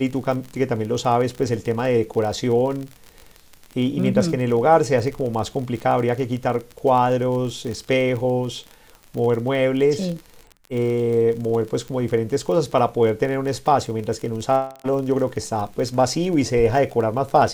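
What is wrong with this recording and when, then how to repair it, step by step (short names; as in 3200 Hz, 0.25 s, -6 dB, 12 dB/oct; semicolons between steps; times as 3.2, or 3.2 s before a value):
crackle 35/s -27 dBFS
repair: de-click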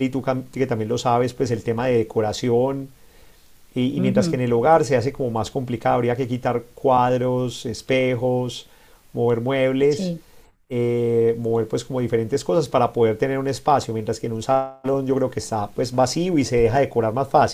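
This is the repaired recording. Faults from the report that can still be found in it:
none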